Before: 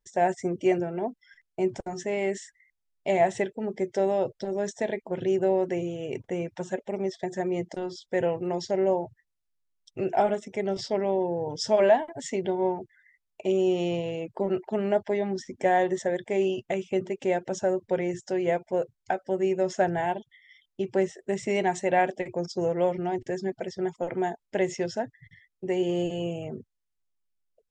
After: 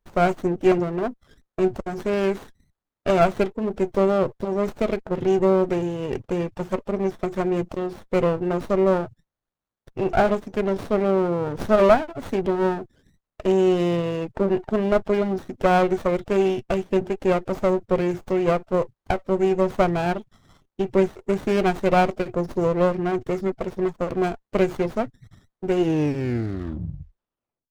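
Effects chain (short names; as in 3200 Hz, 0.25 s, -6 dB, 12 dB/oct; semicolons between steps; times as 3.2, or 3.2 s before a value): tape stop at the end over 1.96 s; running maximum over 17 samples; gain +5.5 dB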